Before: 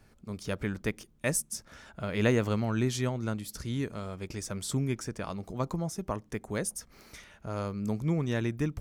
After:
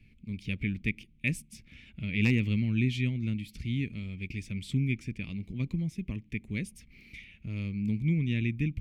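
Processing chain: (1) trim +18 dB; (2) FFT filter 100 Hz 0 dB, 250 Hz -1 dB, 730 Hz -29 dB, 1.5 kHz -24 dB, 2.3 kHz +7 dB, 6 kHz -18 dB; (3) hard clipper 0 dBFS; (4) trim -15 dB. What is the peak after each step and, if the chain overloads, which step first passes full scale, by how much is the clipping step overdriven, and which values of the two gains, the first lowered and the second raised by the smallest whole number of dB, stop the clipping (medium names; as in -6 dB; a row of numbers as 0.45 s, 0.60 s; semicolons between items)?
+5.5 dBFS, +4.5 dBFS, 0.0 dBFS, -15.0 dBFS; step 1, 4.5 dB; step 1 +13 dB, step 4 -10 dB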